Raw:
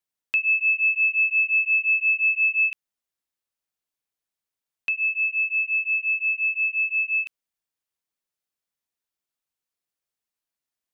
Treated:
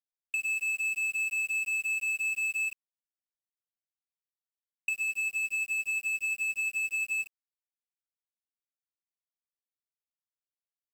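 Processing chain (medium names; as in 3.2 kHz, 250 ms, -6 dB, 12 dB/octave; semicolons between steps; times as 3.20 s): spectral gate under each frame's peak -20 dB strong; in parallel at 0 dB: compressor with a negative ratio -24 dBFS, ratio -0.5; on the sum: power-law waveshaper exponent 2; bit crusher 7-bit; tape noise reduction on one side only decoder only; trim -8.5 dB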